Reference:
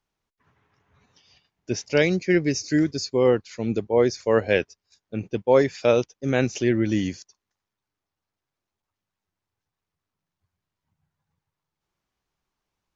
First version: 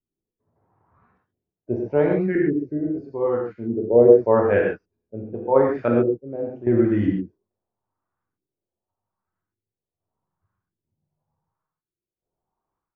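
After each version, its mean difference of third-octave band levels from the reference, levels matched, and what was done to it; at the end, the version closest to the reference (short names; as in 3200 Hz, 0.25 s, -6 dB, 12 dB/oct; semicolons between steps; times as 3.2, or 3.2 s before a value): 9.5 dB: high shelf 3100 Hz -7.5 dB; random-step tremolo 1.8 Hz, depth 85%; LFO low-pass saw up 0.85 Hz 290–1600 Hz; non-linear reverb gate 0.16 s flat, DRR -1.5 dB; gain -1 dB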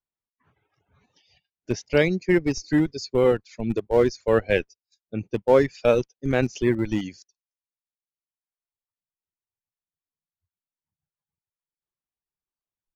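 4.0 dB: spectral noise reduction 15 dB; in parallel at -6 dB: Schmitt trigger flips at -17.5 dBFS; on the sum: reverb removal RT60 1.2 s; high shelf 6600 Hz -11.5 dB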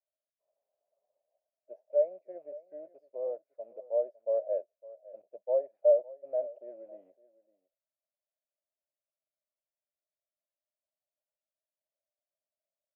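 15.0 dB: rattling part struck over -30 dBFS, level -27 dBFS; Butterworth band-pass 610 Hz, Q 6.1; on a send: echo 0.557 s -19.5 dB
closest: second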